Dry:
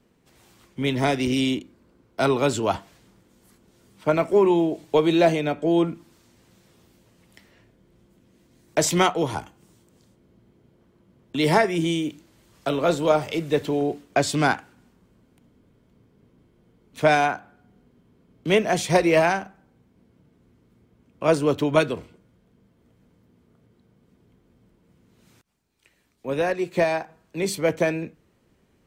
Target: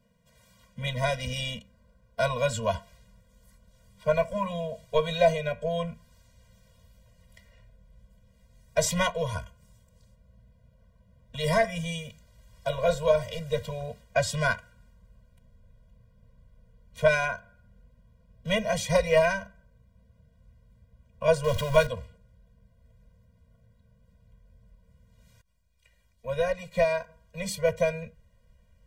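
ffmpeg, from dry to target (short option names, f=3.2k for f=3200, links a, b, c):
-filter_complex "[0:a]asettb=1/sr,asplit=3[a][b][c];[a]atrim=end=21.444[d];[b]atrim=start=21.44:end=21.87,asetpts=PTS-STARTPTS,afade=t=in:d=0.004:c=qsin,afade=t=out:st=0.426:d=0.004:c=qsin,aeval=exprs='val(0)+0.5*0.0473*sgn(val(0))':c=same[e];[c]atrim=start=21.866[f];[d][e]acrossfade=d=0.004:c1=hsin:c2=qsin[g];[g][f]acrossfade=d=0.004:c1=qsin:c2=hsin,asubboost=boost=7.5:cutoff=62,afftfilt=real='re*eq(mod(floor(b*sr/1024/230),2),0)':imag='im*eq(mod(floor(b*sr/1024/230),2),0)':win_size=1024:overlap=0.75,volume=-1dB"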